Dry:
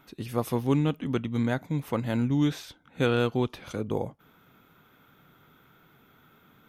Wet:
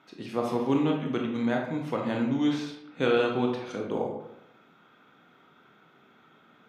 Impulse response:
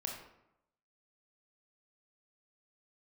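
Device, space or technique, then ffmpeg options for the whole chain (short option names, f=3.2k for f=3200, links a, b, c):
supermarket ceiling speaker: -filter_complex "[0:a]highpass=210,lowpass=5.9k[a];[1:a]atrim=start_sample=2205[b];[a][b]afir=irnorm=-1:irlink=0,volume=1.5dB"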